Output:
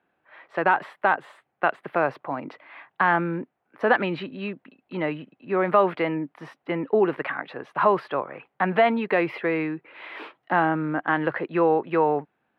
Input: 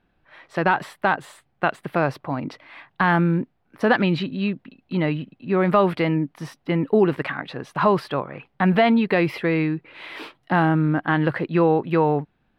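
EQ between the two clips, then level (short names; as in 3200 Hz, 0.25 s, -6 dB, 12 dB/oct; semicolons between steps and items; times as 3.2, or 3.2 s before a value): HPF 110 Hz; three-band isolator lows -12 dB, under 330 Hz, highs -18 dB, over 2900 Hz; 0.0 dB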